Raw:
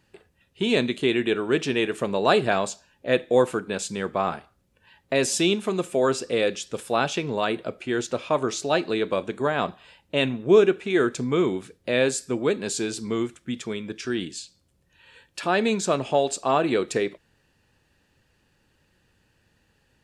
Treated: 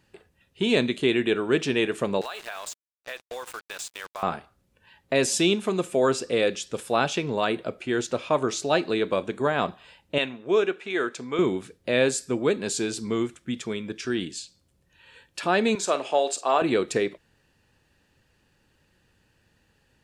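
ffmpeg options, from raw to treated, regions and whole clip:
-filter_complex "[0:a]asettb=1/sr,asplit=3[a][b][c];[a]atrim=end=2.214[d];[b]atrim=start=2.21:end=4.23,asetpts=PTS-STARTPTS,afade=t=in:d=0.004:c=qsin,afade=t=out:st=2.016:d=0.004:c=qsin,highpass=1k,acrusher=bits=5:mix=0:aa=0.5,acompressor=threshold=-31dB:ratio=8:attack=3.2:release=140:knee=1:detection=peak[e];[c]atrim=start=4.226[f];[d][e]acrossfade=d=0.004:c1=hsin:c2=qsin[g];[g][f]acrossfade=d=0.004:c1=qsin:c2=hsin,asettb=1/sr,asplit=3[h][i][j];[h]atrim=end=10.184[k];[i]atrim=start=10.18:end=11.39,asetpts=PTS-STARTPTS,afade=t=in:d=0.004:c=qsin,afade=t=out:st=1.206:d=0.004:c=qsin,highpass=f=710:p=1,highshelf=f=7k:g=-9.5[l];[j]atrim=start=11.386[m];[k][l]acrossfade=d=0.004:c1=hsin:c2=qsin[n];[n][m]acrossfade=d=0.004:c1=qsin:c2=hsin,asettb=1/sr,asplit=3[o][p][q];[o]atrim=end=15.754[r];[p]atrim=start=15.75:end=16.62,asetpts=PTS-STARTPTS,afade=t=in:d=0.004:c=qsin,afade=t=out:st=0.866:d=0.004:c=qsin,highpass=430,asplit=2[s][t];[t]adelay=47,volume=-13dB[u];[s][u]amix=inputs=2:normalize=0,atrim=end_sample=38367[v];[q]atrim=start=16.616[w];[r][v]acrossfade=d=0.004:c1=hsin:c2=qsin[x];[x][w]acrossfade=d=0.004:c1=qsin:c2=hsin"

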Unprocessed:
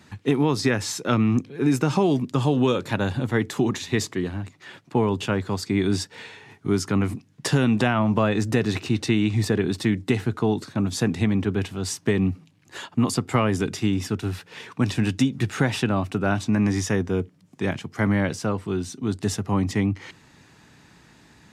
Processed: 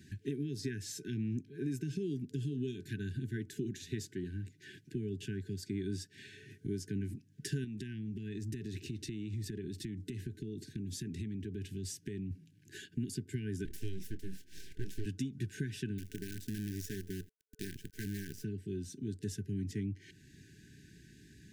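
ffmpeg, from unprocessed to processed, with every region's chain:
-filter_complex "[0:a]asettb=1/sr,asplit=3[a][b][c];[a]atrim=end=7.644[d];[b]atrim=start=7.64:end=12.31,asetpts=PTS-STARTPTS,afade=t=in:d=0.004:c=qsin,afade=t=out:st=4.666:d=0.004:c=qsin,acompressor=threshold=-25dB:ratio=6:attack=3.2:release=140:knee=1:detection=peak,asuperstop=centerf=910:order=8:qfactor=0.76[e];[c]atrim=start=12.306[f];[d][e]acrossfade=d=0.004:c1=hsin:c2=qsin[g];[g][f]acrossfade=d=0.004:c1=qsin:c2=hsin,asettb=1/sr,asplit=3[h][i][j];[h]atrim=end=13.654[k];[i]atrim=start=13.65:end=15.06,asetpts=PTS-STARTPTS,afade=t=in:d=0.004:c=qsin,afade=t=out:st=1.406:d=0.004:c=qsin,aeval=exprs='abs(val(0))':c=same,asplit=2[l][m];[m]adelay=26,volume=-13dB[n];[l][n]amix=inputs=2:normalize=0,atrim=end_sample=62181[o];[j]atrim=start=15.056[p];[k][o]acrossfade=d=0.004:c1=hsin:c2=qsin[q];[q][p]acrossfade=d=0.004:c1=qsin:c2=hsin,asettb=1/sr,asplit=3[r][s][t];[r]atrim=end=15.984[u];[s]atrim=start=15.98:end=18.44,asetpts=PTS-STARTPTS,afade=t=in:d=0.004:c=qsin,afade=t=out:st=2.456:d=0.004:c=qsin,acompressor=threshold=-24dB:ratio=3:attack=3.2:release=140:knee=1:detection=peak,acrusher=bits=5:dc=4:mix=0:aa=0.000001[v];[t]atrim=start=18.436[w];[u][v]acrossfade=d=0.004:c1=hsin:c2=qsin[x];[x][w]acrossfade=d=0.004:c1=qsin:c2=hsin,acompressor=threshold=-40dB:ratio=2,equalizer=f=250:t=o:w=1:g=-3,equalizer=f=500:t=o:w=1:g=-4,equalizer=f=1k:t=o:w=1:g=9,equalizer=f=2k:t=o:w=1:g=-11,equalizer=f=4k:t=o:w=1:g=-5,equalizer=f=8k:t=o:w=1:g=-3,afftfilt=real='re*(1-between(b*sr/4096,440,1500))':imag='im*(1-between(b*sr/4096,440,1500))':win_size=4096:overlap=0.75,volume=-1dB"

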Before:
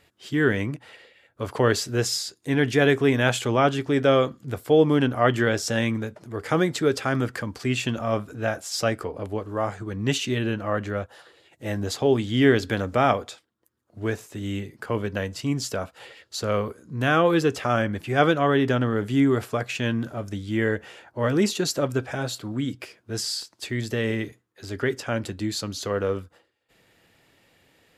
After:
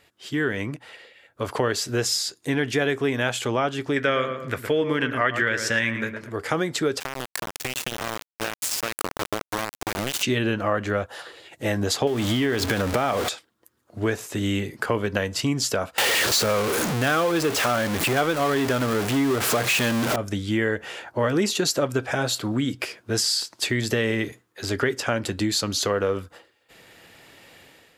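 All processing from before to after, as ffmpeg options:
-filter_complex "[0:a]asettb=1/sr,asplit=3[a][b][c];[a]atrim=end=3.964[d];[b]atrim=start=3.96:end=6.31,asetpts=PTS-STARTPTS,afade=t=in:d=0.004:c=qsin,afade=t=out:st=2.346:d=0.004:c=qsin,equalizer=f=1.9k:t=o:w=1.2:g=11.5,bandreject=f=760:w=5.7,asplit=2[e][f];[f]adelay=113,lowpass=f=2.1k:p=1,volume=-9dB,asplit=2[g][h];[h]adelay=113,lowpass=f=2.1k:p=1,volume=0.29,asplit=2[i][j];[j]adelay=113,lowpass=f=2.1k:p=1,volume=0.29[k];[e][g][i][k]amix=inputs=4:normalize=0,atrim=end_sample=103635[l];[c]atrim=start=6.306[m];[d][l]acrossfade=d=0.004:c1=hsin:c2=qsin[n];[n][m]acrossfade=d=0.004:c1=qsin:c2=hsin,asettb=1/sr,asplit=3[o][p][q];[o]atrim=end=7.004[r];[p]atrim=start=7:end=10.23,asetpts=PTS-STARTPTS,afade=t=in:d=0.004:c=qsin,afade=t=out:st=3.226:d=0.004:c=qsin,aemphasis=mode=production:type=50fm,acompressor=threshold=-28dB:ratio=12:attack=3.2:release=140:knee=1:detection=peak,aeval=exprs='val(0)*gte(abs(val(0)),0.0398)':c=same[s];[q]atrim=start=10.226[t];[r][s]acrossfade=d=0.004:c1=hsin:c2=qsin[u];[u][t]acrossfade=d=0.004:c1=qsin:c2=hsin,asettb=1/sr,asplit=3[v][w][x];[v]atrim=end=12.074[y];[w]atrim=start=12.07:end=13.29,asetpts=PTS-STARTPTS,afade=t=in:d=0.004:c=qsin,afade=t=out:st=1.216:d=0.004:c=qsin,aeval=exprs='val(0)+0.5*0.0422*sgn(val(0))':c=same,acompressor=threshold=-21dB:ratio=4:attack=3.2:release=140:knee=1:detection=peak[z];[x]atrim=start=13.286[aa];[y][z]acrossfade=d=0.004:c1=hsin:c2=qsin[ab];[ab][aa]acrossfade=d=0.004:c1=qsin:c2=hsin,asettb=1/sr,asplit=3[ac][ad][ae];[ac]atrim=end=15.984[af];[ad]atrim=start=15.98:end=20.16,asetpts=PTS-STARTPTS,afade=t=in:d=0.004:c=qsin,afade=t=out:st=4.176:d=0.004:c=qsin,aeval=exprs='val(0)+0.5*0.1*sgn(val(0))':c=same,lowshelf=f=61:g=-10.5[ag];[ae]atrim=start=20.156[ah];[af][ag]acrossfade=d=0.004:c1=hsin:c2=qsin[ai];[ai][ah]acrossfade=d=0.004:c1=qsin:c2=hsin,dynaudnorm=f=920:g=3:m=11.5dB,lowshelf=f=300:g=-6,acompressor=threshold=-24dB:ratio=3,volume=2.5dB"

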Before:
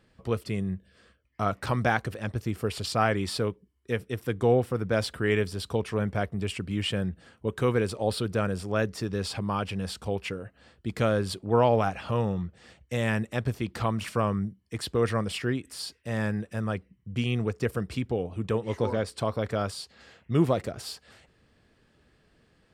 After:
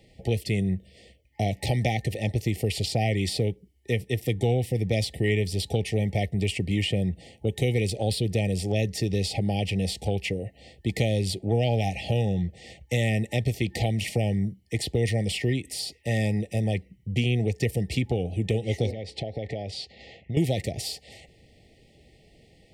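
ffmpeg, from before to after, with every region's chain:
-filter_complex "[0:a]asettb=1/sr,asplit=3[a][b][c];[a]atrim=end=18.914[d];[b]atrim=start=18.91:end=20.37,asetpts=PTS-STARTPTS,afade=t=in:d=0.004:c=qsin,afade=t=out:st=1.456:d=0.004:c=qsin,lowpass=4k,acompressor=threshold=-35dB:ratio=6:attack=3.2:release=140:knee=1:detection=peak[e];[c]atrim=start=20.366[f];[d][e]acrossfade=d=0.004:c1=hsin:c2=qsin[g];[g][f]acrossfade=d=0.004:c1=qsin:c2=hsin,afftfilt=real='re*(1-between(b*sr/4096,840,1800))':imag='im*(1-between(b*sr/4096,840,1800))':win_size=4096:overlap=0.75,equalizer=f=240:w=2.3:g=-4,acrossover=split=240|1700[h][i][j];[h]acompressor=threshold=-32dB:ratio=4[k];[i]acompressor=threshold=-38dB:ratio=4[l];[j]acompressor=threshold=-39dB:ratio=4[m];[k][l][m]amix=inputs=3:normalize=0,volume=8.5dB"

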